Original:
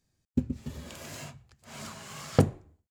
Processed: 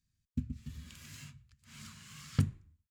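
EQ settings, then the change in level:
bass and treble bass −2 dB, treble −5 dB
guitar amp tone stack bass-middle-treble 6-0-2
flat-topped bell 510 Hz −8.5 dB
+11.5 dB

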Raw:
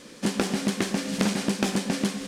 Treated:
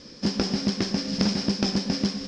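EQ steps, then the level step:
low-pass with resonance 5,200 Hz, resonance Q 12
spectral tilt −2 dB per octave
parametric band 76 Hz +8.5 dB 0.86 octaves
−4.0 dB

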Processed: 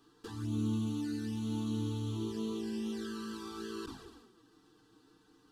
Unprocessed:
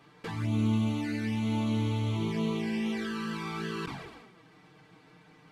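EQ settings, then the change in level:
parametric band 880 Hz −11 dB 1.4 octaves
phaser with its sweep stopped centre 590 Hz, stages 6
0.0 dB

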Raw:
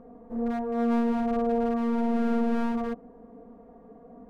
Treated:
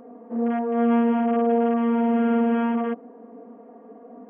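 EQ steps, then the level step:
linear-phase brick-wall band-pass 200–3,300 Hz
+5.5 dB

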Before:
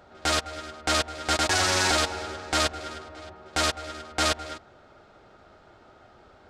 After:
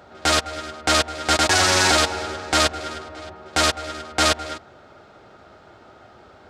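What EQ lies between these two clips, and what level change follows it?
high-pass filter 64 Hz
+6.0 dB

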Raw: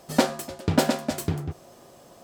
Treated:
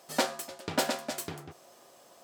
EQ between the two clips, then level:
high-pass filter 740 Hz 6 dB per octave
−2.5 dB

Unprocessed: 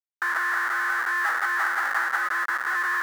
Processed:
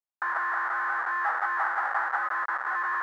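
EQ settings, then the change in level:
resonant band-pass 790 Hz, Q 1.9
+4.5 dB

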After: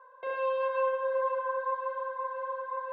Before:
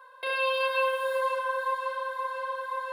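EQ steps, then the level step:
low-pass filter 1,100 Hz 12 dB per octave
0.0 dB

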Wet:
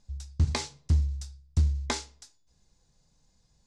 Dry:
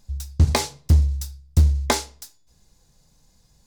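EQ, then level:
dynamic equaliser 600 Hz, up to −6 dB, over −40 dBFS, Q 1.1
low-pass filter 8,200 Hz 24 dB per octave
−8.0 dB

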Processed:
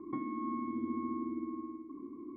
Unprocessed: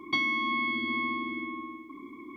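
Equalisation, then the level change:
elliptic low-pass filter 1,700 Hz, stop band 40 dB
low shelf with overshoot 540 Hz +6 dB, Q 1.5
−7.0 dB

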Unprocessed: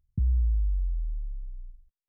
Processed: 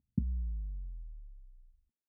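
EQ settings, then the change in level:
resonant band-pass 240 Hz, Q 2.9
+9.5 dB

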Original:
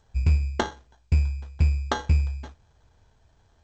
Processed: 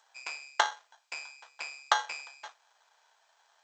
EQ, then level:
high-pass filter 760 Hz 24 dB per octave
+3.5 dB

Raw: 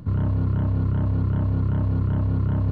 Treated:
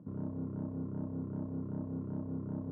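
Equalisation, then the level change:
four-pole ladder band-pass 280 Hz, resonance 25%
low-shelf EQ 360 Hz −9 dB
+7.5 dB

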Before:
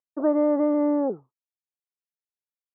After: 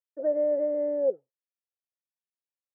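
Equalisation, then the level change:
dynamic equaliser 590 Hz, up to +5 dB, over −32 dBFS, Q 0.95
formant filter e
low-shelf EQ 150 Hz +9 dB
0.0 dB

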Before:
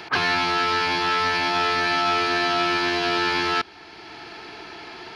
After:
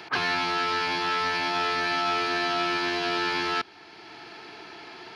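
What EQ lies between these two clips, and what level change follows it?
high-pass filter 100 Hz 12 dB per octave
−4.5 dB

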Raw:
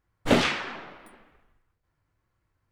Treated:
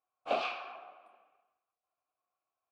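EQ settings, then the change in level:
dynamic equaliser 4,500 Hz, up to +7 dB, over −48 dBFS, Q 2.5
formant filter a
low-shelf EQ 200 Hz −10.5 dB
+2.0 dB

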